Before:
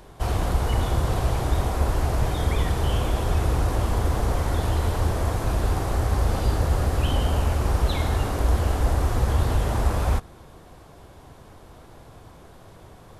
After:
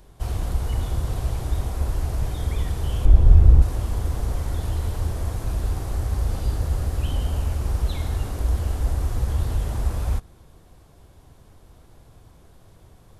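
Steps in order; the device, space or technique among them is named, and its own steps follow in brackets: smiley-face EQ (low shelf 110 Hz +8 dB; bell 1000 Hz -3 dB 2.3 oct; high shelf 5200 Hz +5 dB); 3.05–3.62 tilt -3 dB/oct; gain -7 dB

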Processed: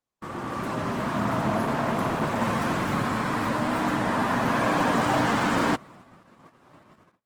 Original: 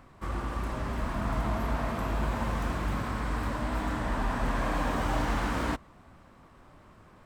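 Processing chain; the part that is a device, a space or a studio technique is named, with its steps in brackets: video call (HPF 120 Hz 24 dB/oct; AGC gain up to 6 dB; gate -49 dBFS, range -37 dB; gain +2 dB; Opus 16 kbps 48000 Hz)

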